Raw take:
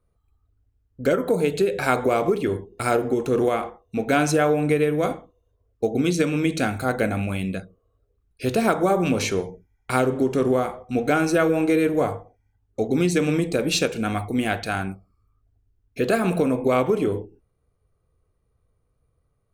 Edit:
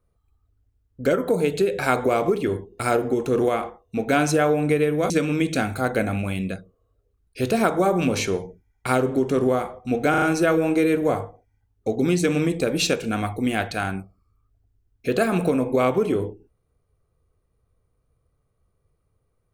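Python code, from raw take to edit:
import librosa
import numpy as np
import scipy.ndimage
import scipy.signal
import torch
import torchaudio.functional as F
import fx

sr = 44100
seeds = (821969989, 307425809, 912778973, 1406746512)

y = fx.edit(x, sr, fx.cut(start_s=5.1, length_s=1.04),
    fx.stutter(start_s=11.14, slice_s=0.04, count=4), tone=tone)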